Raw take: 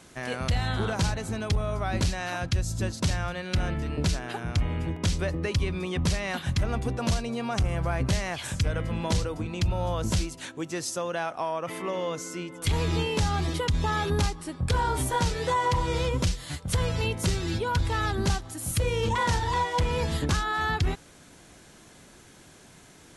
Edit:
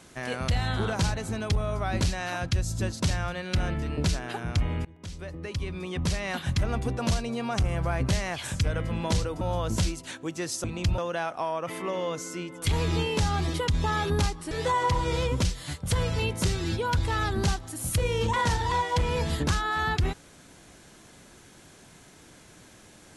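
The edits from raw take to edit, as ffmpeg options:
ffmpeg -i in.wav -filter_complex "[0:a]asplit=6[link_01][link_02][link_03][link_04][link_05][link_06];[link_01]atrim=end=4.85,asetpts=PTS-STARTPTS,afade=type=out:start_time=4.846:duration=0.004:curve=hsin:silence=0.0668344[link_07];[link_02]atrim=start=4.85:end=9.412,asetpts=PTS-STARTPTS,afade=type=in:duration=1.56:silence=0.0668344[link_08];[link_03]atrim=start=9.748:end=10.982[link_09];[link_04]atrim=start=9.408:end=9.752[link_10];[link_05]atrim=start=10.978:end=14.512[link_11];[link_06]atrim=start=15.328[link_12];[link_07][link_08]concat=n=2:v=0:a=1[link_13];[link_13][link_09]acrossfade=duration=0.004:curve1=hsin:curve2=hsin[link_14];[link_14][link_10]acrossfade=duration=0.004:curve1=hsin:curve2=hsin[link_15];[link_15][link_11]acrossfade=duration=0.004:curve1=hsin:curve2=hsin[link_16];[link_16][link_12]acrossfade=duration=0.004:curve1=hsin:curve2=hsin" out.wav

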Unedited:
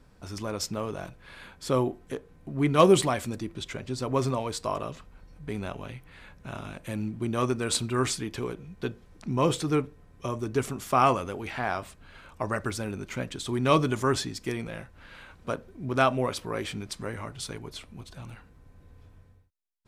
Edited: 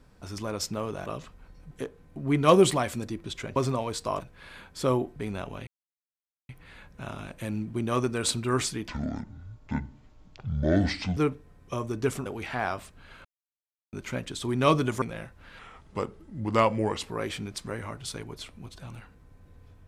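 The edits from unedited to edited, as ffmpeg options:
ffmpeg -i in.wav -filter_complex "[0:a]asplit=15[link_01][link_02][link_03][link_04][link_05][link_06][link_07][link_08][link_09][link_10][link_11][link_12][link_13][link_14][link_15];[link_01]atrim=end=1.062[link_16];[link_02]atrim=start=4.788:end=5.442[link_17];[link_03]atrim=start=2.018:end=3.872[link_18];[link_04]atrim=start=4.148:end=4.792[link_19];[link_05]atrim=start=1.058:end=2.022[link_20];[link_06]atrim=start=5.438:end=5.95,asetpts=PTS-STARTPTS,afade=type=out:start_time=0.508:duration=0.004:curve=hsin,apad=pad_dur=0.82[link_21];[link_07]atrim=start=5.95:end=8.344,asetpts=PTS-STARTPTS,afade=type=in:duration=0.004:curve=hsin[link_22];[link_08]atrim=start=8.34:end=9.69,asetpts=PTS-STARTPTS,asetrate=26019,aresample=44100[link_23];[link_09]atrim=start=9.686:end=10.782[link_24];[link_10]atrim=start=11.298:end=12.29,asetpts=PTS-STARTPTS,afade=type=out:start_time=0.988:duration=0.004:curve=hsin[link_25];[link_11]atrim=start=12.29:end=12.97,asetpts=PTS-STARTPTS,volume=0[link_26];[link_12]atrim=start=12.97:end=14.062,asetpts=PTS-STARTPTS,afade=type=in:duration=0.004:curve=hsin[link_27];[link_13]atrim=start=14.588:end=15.164[link_28];[link_14]atrim=start=15.16:end=16.43,asetpts=PTS-STARTPTS,asetrate=37485,aresample=44100[link_29];[link_15]atrim=start=16.426[link_30];[link_16][link_17]acrossfade=duration=0.004:curve1=hsin:curve2=hsin[link_31];[link_31][link_18]acrossfade=duration=0.004:curve1=hsin:curve2=hsin[link_32];[link_32][link_19]acrossfade=duration=0.004:curve1=hsin:curve2=hsin[link_33];[link_33][link_20]acrossfade=duration=0.004:curve1=hsin:curve2=hsin[link_34];[link_21][link_22]concat=n=2:v=0:a=1[link_35];[link_34][link_35]acrossfade=duration=0.004:curve1=hsin:curve2=hsin[link_36];[link_36][link_23]acrossfade=duration=0.004:curve1=hsin:curve2=hsin[link_37];[link_37][link_24]acrossfade=duration=0.004:curve1=hsin:curve2=hsin[link_38];[link_25][link_26][link_27]concat=n=3:v=0:a=1[link_39];[link_38][link_39]acrossfade=duration=0.004:curve1=hsin:curve2=hsin[link_40];[link_40][link_28]acrossfade=duration=0.004:curve1=hsin:curve2=hsin[link_41];[link_41][link_29]acrossfade=duration=0.004:curve1=hsin:curve2=hsin[link_42];[link_42][link_30]acrossfade=duration=0.004:curve1=hsin:curve2=hsin" out.wav

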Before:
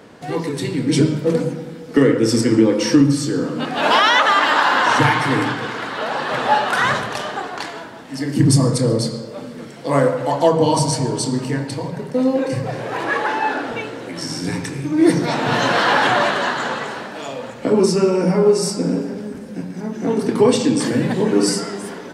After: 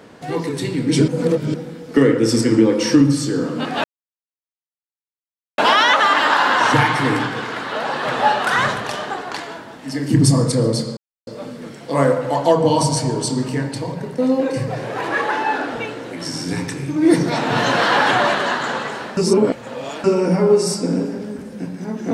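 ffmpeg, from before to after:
ffmpeg -i in.wav -filter_complex "[0:a]asplit=7[link_01][link_02][link_03][link_04][link_05][link_06][link_07];[link_01]atrim=end=1.082[link_08];[link_02]atrim=start=1.078:end=1.542,asetpts=PTS-STARTPTS,areverse[link_09];[link_03]atrim=start=1.538:end=3.84,asetpts=PTS-STARTPTS,afade=type=out:start_time=2.298:duration=0.004:curve=hsin,apad=pad_dur=1.74[link_10];[link_04]atrim=start=3.84:end=9.23,asetpts=PTS-STARTPTS,afade=type=in:duration=0.004:curve=hsin,afade=type=out:start_time=5.386:duration=0.004:curve=hsin,apad=pad_dur=0.3[link_11];[link_05]atrim=start=9.23:end=17.132,asetpts=PTS-STARTPTS,afade=type=in:duration=0.004:curve=hsin[link_12];[link_06]atrim=start=17.128:end=18.002,asetpts=PTS-STARTPTS,areverse[link_13];[link_07]atrim=start=17.998[link_14];[link_08][link_09]acrossfade=duration=0.004:curve1=hsin:curve2=hsin[link_15];[link_10][link_11][link_12]concat=n=3:v=0:a=1[link_16];[link_15][link_16]acrossfade=duration=0.004:curve1=hsin:curve2=hsin[link_17];[link_17][link_13]acrossfade=duration=0.004:curve1=hsin:curve2=hsin[link_18];[link_18][link_14]acrossfade=duration=0.004:curve1=hsin:curve2=hsin" out.wav

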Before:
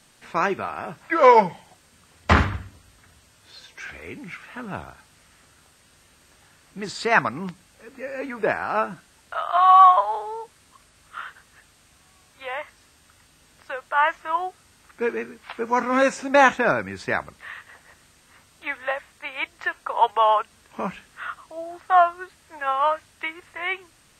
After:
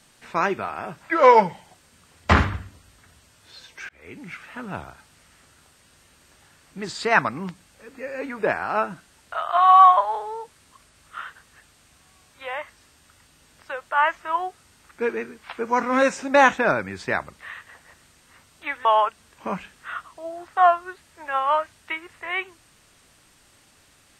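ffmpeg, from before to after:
ffmpeg -i in.wav -filter_complex "[0:a]asplit=3[link_01][link_02][link_03];[link_01]atrim=end=3.89,asetpts=PTS-STARTPTS,afade=type=out:start_time=3.886:duration=0.004:curve=hsin[link_04];[link_02]atrim=start=3.89:end=18.852,asetpts=PTS-STARTPTS,afade=type=in:duration=0.51:curve=qsin[link_05];[link_03]atrim=start=20.178[link_06];[link_04][link_05]concat=n=2:v=0:a=1[link_07];[link_07][link_06]acrossfade=duration=0.004:curve1=hsin:curve2=hsin" out.wav

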